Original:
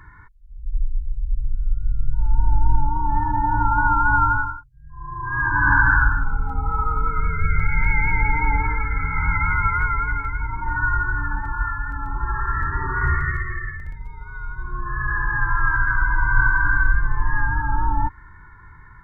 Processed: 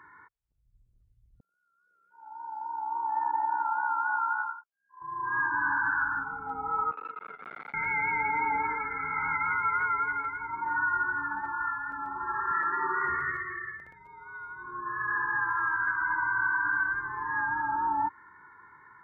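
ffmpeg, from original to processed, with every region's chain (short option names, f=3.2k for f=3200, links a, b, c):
-filter_complex "[0:a]asettb=1/sr,asplit=3[a][b][c];[a]atrim=end=1.404[d];[b]atrim=start=1.4:end=5.02,asetpts=PTS-STARTPTS,afade=t=in:d=0.004:c=qsin,afade=t=out:st=3.616:d=0.004:c=qsin,tremolo=f=65:d=0.571,highpass=f=450:w=0.5412,highpass=f=450:w=1.3066[e];[c]atrim=start=5.016[f];[d][e]acrossfade=d=0.004:c1=hsin:c2=qsin[g];[g][f]acrossfade=d=0.004:c1=qsin:c2=hsin,asettb=1/sr,asplit=3[h][i][j];[h]atrim=end=6.914[k];[i]atrim=start=6.91:end=7.74,asetpts=PTS-STARTPTS,afade=t=in:d=0.004:c=qsin,afade=t=out:st=0.826:d=0.004:c=qsin,agate=range=-33dB:threshold=-17dB:ratio=3:release=100:detection=peak,aeval=exprs='(tanh(22.4*val(0)+0.75)-tanh(0.75))/22.4':c=same,highpass=250,lowpass=2k[l];[j]atrim=start=7.736[m];[k][l]acrossfade=d=0.004:c1=hsin:c2=qsin[n];[n][m]acrossfade=d=0.004:c1=qsin:c2=hsin,asettb=1/sr,asplit=3[o][p][q];[o]atrim=end=12.514[r];[p]atrim=start=12.51:end=13.09,asetpts=PTS-STARTPTS,afade=t=in:d=0.004:c=qsin,afade=t=out:st=0.576:d=0.004:c=qsin,highpass=200,aecho=1:1:5.8:0.65,atrim=end_sample=25578,acompressor=mode=upward:threshold=-31dB:ratio=2.5:attack=3.2:release=140:knee=2.83:detection=peak[s];[q]atrim=start=13.086[t];[r][s]acrossfade=d=0.004:c1=hsin:c2=qsin[u];[u][t]acrossfade=d=0.004:c1=qsin:c2=hsin,highpass=410,highshelf=f=2k:g=-11.5,alimiter=limit=-19.5dB:level=0:latency=1:release=142"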